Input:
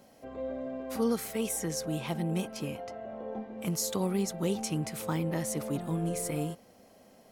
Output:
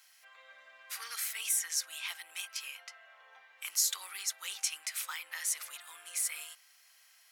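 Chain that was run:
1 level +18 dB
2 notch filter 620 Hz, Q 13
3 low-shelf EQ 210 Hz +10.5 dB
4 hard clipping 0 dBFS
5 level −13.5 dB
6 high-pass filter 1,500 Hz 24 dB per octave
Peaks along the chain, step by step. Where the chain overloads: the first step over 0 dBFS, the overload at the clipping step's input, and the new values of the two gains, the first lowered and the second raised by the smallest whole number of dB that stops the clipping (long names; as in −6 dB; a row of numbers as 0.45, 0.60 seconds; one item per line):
−0.5, −1.0, +3.0, 0.0, −13.5, −15.5 dBFS
step 3, 3.0 dB
step 1 +15 dB, step 5 −10.5 dB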